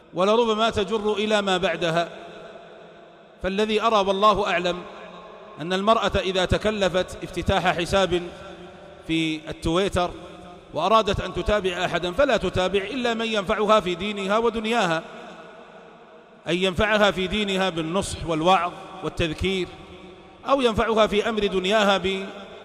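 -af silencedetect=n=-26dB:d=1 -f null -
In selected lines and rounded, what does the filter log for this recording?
silence_start: 2.07
silence_end: 3.44 | silence_duration: 1.37
silence_start: 15.00
silence_end: 16.47 | silence_duration: 1.47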